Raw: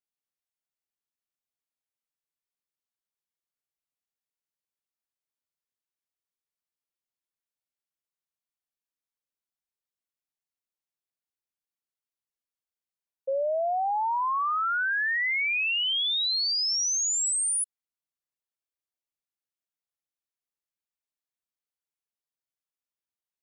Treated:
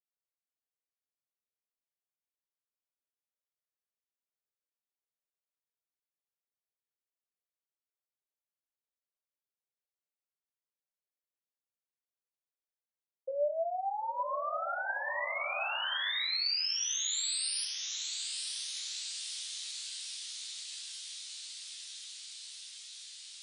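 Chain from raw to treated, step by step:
resonators tuned to a chord C2 major, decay 0.34 s
feedback delay with all-pass diffusion 998 ms, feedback 78%, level −6.5 dB
high-pass filter sweep 460 Hz → 3,800 Hz, 0:15.45–0:16.47

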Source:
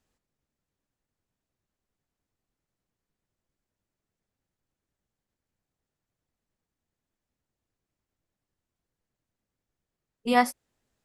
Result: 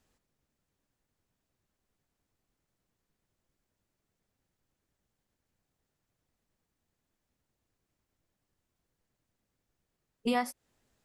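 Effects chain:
downward compressor 8 to 1, threshold −30 dBFS, peak gain reduction 14.5 dB
level +3.5 dB

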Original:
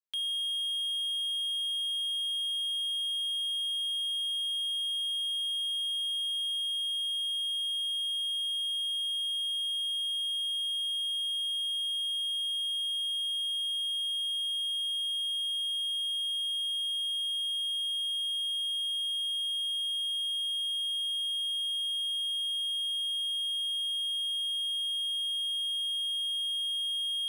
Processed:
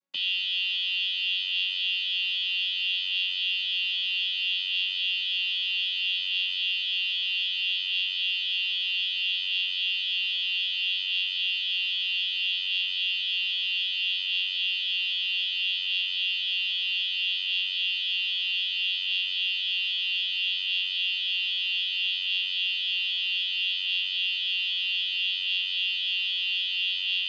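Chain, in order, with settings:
channel vocoder with a chord as carrier bare fifth, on F#3
level +5.5 dB

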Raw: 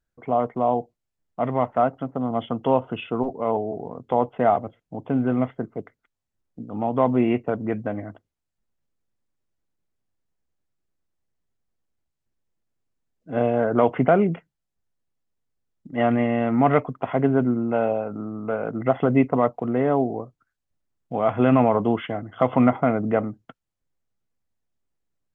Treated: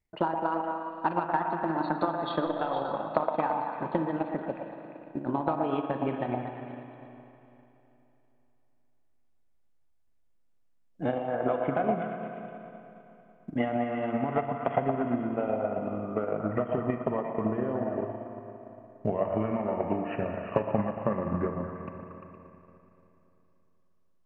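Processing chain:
gliding playback speed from 134% → 75%
downward compressor, threshold −26 dBFS, peak gain reduction 13.5 dB
on a send: echo through a band-pass that steps 116 ms, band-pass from 760 Hz, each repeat 0.7 octaves, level −1 dB
on the sum: spring reverb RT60 3.1 s, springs 37/57 ms, chirp 65 ms, DRR 3 dB
transient designer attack +7 dB, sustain −4 dB
level −3 dB

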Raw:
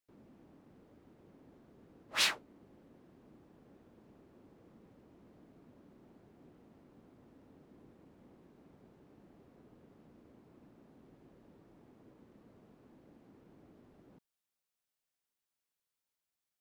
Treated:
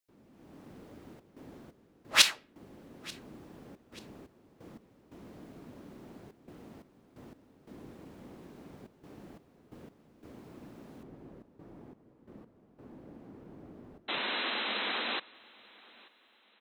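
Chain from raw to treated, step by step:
high-shelf EQ 2,200 Hz +5.5 dB, from 0:11.03 −8.5 dB
automatic gain control gain up to 13.5 dB
gate pattern "xxxxxxx.xx..x.." 88 BPM −12 dB
0:14.08–0:15.20: sound drawn into the spectrogram noise 200–4,100 Hz −31 dBFS
repeating echo 886 ms, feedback 38%, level −23.5 dB
convolution reverb RT60 0.50 s, pre-delay 20 ms, DRR 24.5 dB
level −3 dB

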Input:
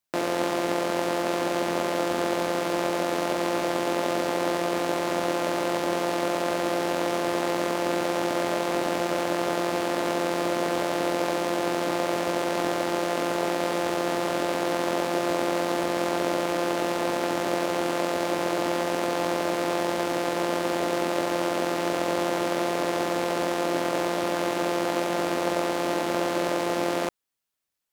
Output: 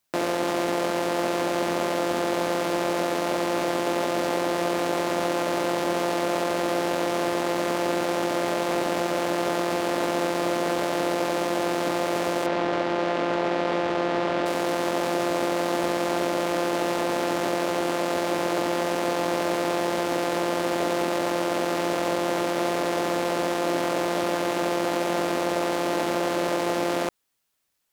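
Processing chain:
0:12.46–0:14.46: low-pass filter 3,700 Hz 12 dB per octave
brickwall limiter −21.5 dBFS, peak gain reduction 11 dB
level +8 dB

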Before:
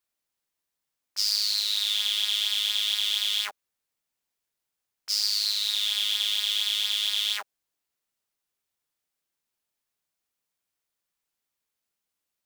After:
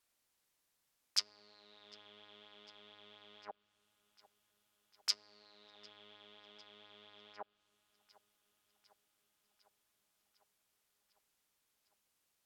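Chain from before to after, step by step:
treble cut that deepens with the level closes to 350 Hz, closed at −23.5 dBFS
delay with a low-pass on its return 752 ms, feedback 70%, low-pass 3,800 Hz, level −21 dB
level +4 dB

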